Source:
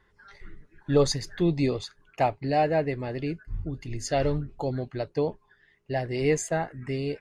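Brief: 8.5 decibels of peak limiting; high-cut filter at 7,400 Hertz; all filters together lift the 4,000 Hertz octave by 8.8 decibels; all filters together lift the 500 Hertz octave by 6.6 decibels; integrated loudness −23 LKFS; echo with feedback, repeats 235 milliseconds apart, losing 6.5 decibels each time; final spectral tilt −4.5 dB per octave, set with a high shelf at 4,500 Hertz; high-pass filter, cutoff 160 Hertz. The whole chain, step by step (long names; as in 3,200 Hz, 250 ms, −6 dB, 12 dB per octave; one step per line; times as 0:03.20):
high-pass filter 160 Hz
low-pass filter 7,400 Hz
parametric band 500 Hz +8 dB
parametric band 4,000 Hz +8.5 dB
high-shelf EQ 4,500 Hz +4.5 dB
brickwall limiter −13 dBFS
repeating echo 235 ms, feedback 47%, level −6.5 dB
level +1.5 dB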